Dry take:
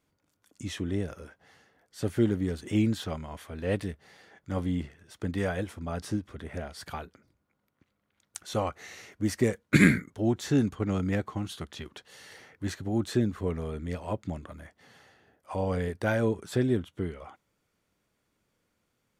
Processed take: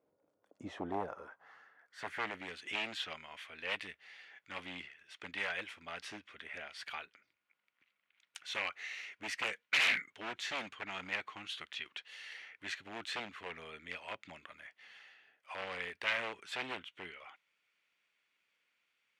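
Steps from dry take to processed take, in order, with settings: wavefolder -23.5 dBFS; band-pass sweep 530 Hz -> 2.5 kHz, 0.37–2.48 s; trim +7 dB

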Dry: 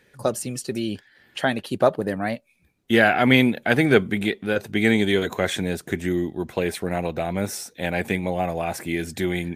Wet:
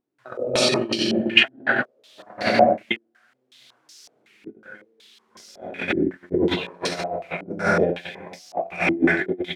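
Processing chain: bass shelf 87 Hz -5.5 dB; hum notches 50/100/150/200/250/300/350 Hz; feedback delay 93 ms, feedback 51%, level -6.5 dB; simulated room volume 1200 m³, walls mixed, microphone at 3.2 m; compressor with a negative ratio -24 dBFS, ratio -1; gate -20 dBFS, range -38 dB; tilt EQ +2.5 dB/octave; added noise violet -42 dBFS; step-sequenced low-pass 5.4 Hz 310–5300 Hz; trim +1 dB

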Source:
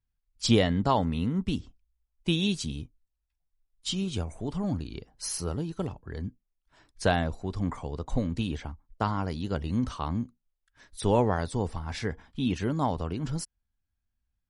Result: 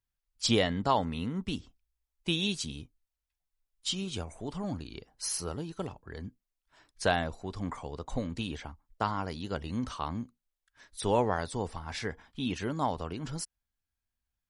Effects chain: bass shelf 350 Hz -8 dB

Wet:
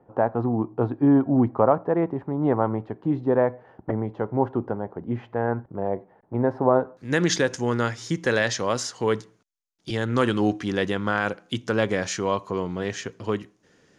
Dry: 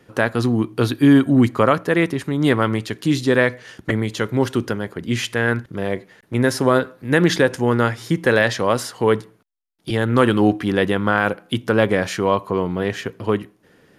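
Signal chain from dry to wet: resonant low-pass 820 Hz, resonance Q 3.4, from 6.97 s 6.5 kHz; trim -6.5 dB

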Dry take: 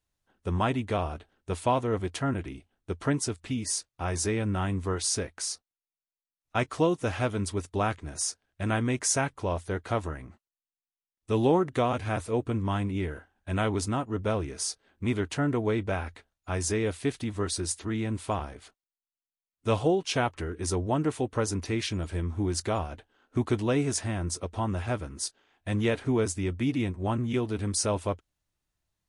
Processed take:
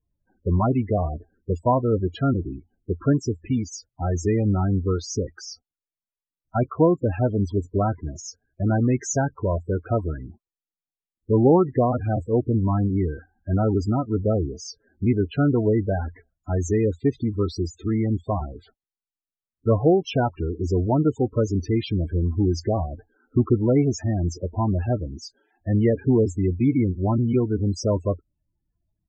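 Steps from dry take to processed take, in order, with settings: bass shelf 490 Hz +4 dB; loudest bins only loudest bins 16; resampled via 16 kHz; trim +4.5 dB

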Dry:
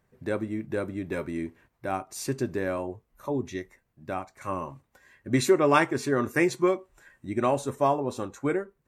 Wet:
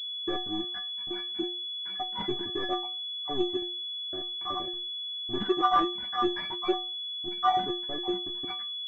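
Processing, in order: random holes in the spectrogram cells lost 57%; waveshaping leveller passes 5; in parallel at -2.5 dB: peak limiter -15 dBFS, peak gain reduction 8.5 dB; on the sum: inharmonic resonator 350 Hz, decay 0.37 s, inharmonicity 0.03; class-D stage that switches slowly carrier 3.4 kHz

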